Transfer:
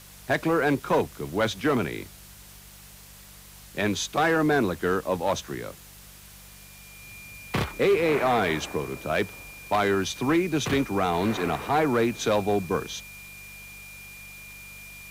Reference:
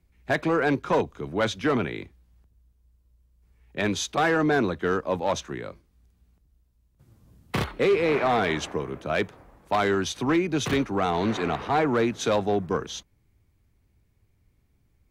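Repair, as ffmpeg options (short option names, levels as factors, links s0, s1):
-af "bandreject=f=48.9:t=h:w=4,bandreject=f=97.8:t=h:w=4,bandreject=f=146.7:t=h:w=4,bandreject=f=195.6:t=h:w=4,bandreject=f=2400:w=30,afftdn=nr=18:nf=-48"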